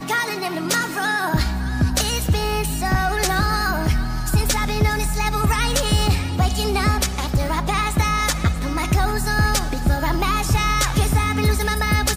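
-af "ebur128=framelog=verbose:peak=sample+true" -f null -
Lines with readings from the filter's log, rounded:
Integrated loudness:
  I:         -20.5 LUFS
  Threshold: -30.4 LUFS
Loudness range:
  LRA:         0.8 LU
  Threshold: -40.4 LUFS
  LRA low:   -20.9 LUFS
  LRA high:  -20.0 LUFS
Sample peak:
  Peak:       -6.8 dBFS
True peak:
  Peak:       -6.8 dBFS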